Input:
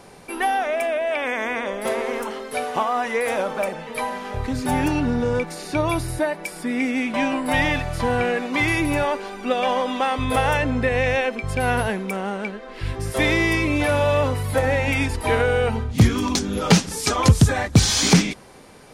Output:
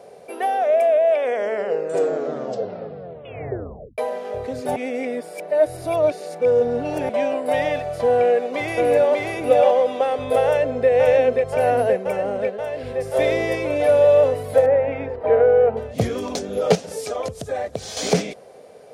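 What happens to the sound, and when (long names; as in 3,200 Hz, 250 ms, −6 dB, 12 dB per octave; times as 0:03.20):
0:01.24: tape stop 2.74 s
0:04.76–0:07.09: reverse
0:08.18–0:09.12: delay throw 590 ms, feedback 15%, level −1.5 dB
0:10.46–0:10.90: delay throw 530 ms, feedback 80%, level −3 dB
0:11.50–0:12.36: notch filter 3,500 Hz, Q 7.7
0:14.66–0:15.77: Chebyshev low-pass filter 1,500 Hz
0:16.75–0:17.97: downward compressor 5 to 1, threshold −23 dBFS
whole clip: high-pass filter 92 Hz 12 dB per octave; flat-topped bell 550 Hz +15 dB 1 octave; level −7.5 dB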